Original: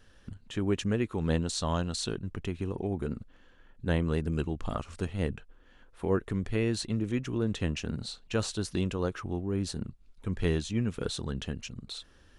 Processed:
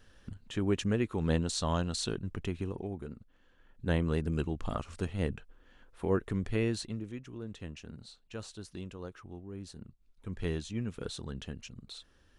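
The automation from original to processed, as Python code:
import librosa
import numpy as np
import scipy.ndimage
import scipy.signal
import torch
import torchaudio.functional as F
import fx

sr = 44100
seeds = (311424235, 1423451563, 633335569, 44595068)

y = fx.gain(x, sr, db=fx.line((2.56, -1.0), (3.17, -11.0), (3.89, -1.5), (6.65, -1.5), (7.2, -12.5), (9.76, -12.5), (10.42, -6.0)))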